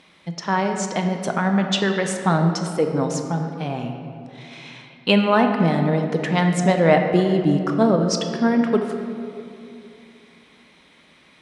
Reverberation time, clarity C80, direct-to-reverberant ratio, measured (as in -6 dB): 2.6 s, 6.5 dB, 4.0 dB